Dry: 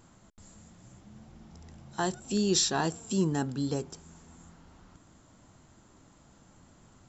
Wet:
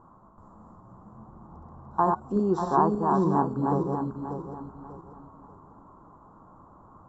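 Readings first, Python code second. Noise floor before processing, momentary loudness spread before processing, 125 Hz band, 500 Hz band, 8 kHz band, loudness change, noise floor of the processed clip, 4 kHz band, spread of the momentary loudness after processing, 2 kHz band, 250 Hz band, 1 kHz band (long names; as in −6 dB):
−60 dBFS, 15 LU, +3.5 dB, +6.0 dB, can't be measured, +3.5 dB, −54 dBFS, below −20 dB, 18 LU, −5.5 dB, +4.5 dB, +12.5 dB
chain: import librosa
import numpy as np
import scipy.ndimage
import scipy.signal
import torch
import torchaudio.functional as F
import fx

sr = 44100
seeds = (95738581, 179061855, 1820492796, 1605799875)

y = fx.reverse_delay_fb(x, sr, ms=295, feedback_pct=55, wet_db=-3)
y = fx.curve_eq(y, sr, hz=(120.0, 690.0, 1100.0, 2300.0, 3800.0), db=(0, 5, 15, -30, -27))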